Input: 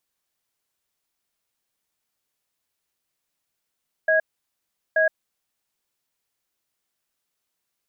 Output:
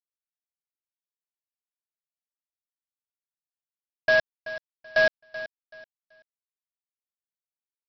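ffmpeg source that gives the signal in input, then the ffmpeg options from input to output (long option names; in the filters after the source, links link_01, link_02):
-f lavfi -i "aevalsrc='0.119*(sin(2*PI*635*t)+sin(2*PI*1650*t))*clip(min(mod(t,0.88),0.12-mod(t,0.88))/0.005,0,1)':duration=1.5:sample_rate=44100"
-af "aresample=11025,acrusher=bits=5:dc=4:mix=0:aa=0.000001,aresample=44100,aecho=1:1:381|762|1143:0.178|0.0462|0.012"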